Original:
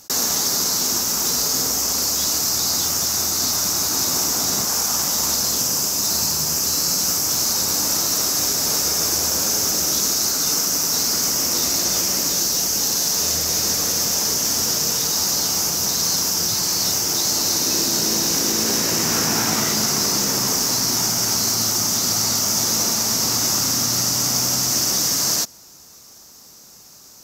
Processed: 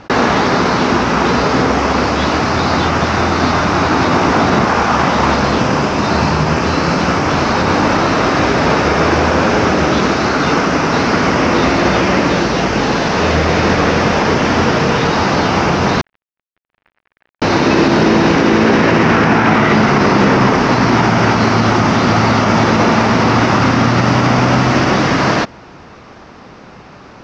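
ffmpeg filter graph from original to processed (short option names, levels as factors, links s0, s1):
-filter_complex "[0:a]asettb=1/sr,asplit=3[s0][s1][s2];[s0]atrim=end=16.014[s3];[s1]atrim=start=16.01:end=17.42,asetpts=PTS-STARTPTS,afade=t=in:d=0.004:c=qsin,afade=t=out:st=1.406:d=0.004:c=qsin,afreqshift=-390,bandpass=f=1700:t=q:w=15,aeval=exprs='sgn(val(0))*max(abs(val(0))-0.01,0)':c=same[s4];[s2]atrim=start=17.416[s5];[s3][s4]acrossfade=d=0.004:c1=hsin:c2=qsin[s6];[s6][s5]acrossfade=d=0.004:c1=qsin:c2=hsin,lowpass=f=2600:w=0.5412,lowpass=f=2600:w=1.3066,alimiter=level_in=9.44:limit=0.891:release=50:level=0:latency=1,volume=0.891"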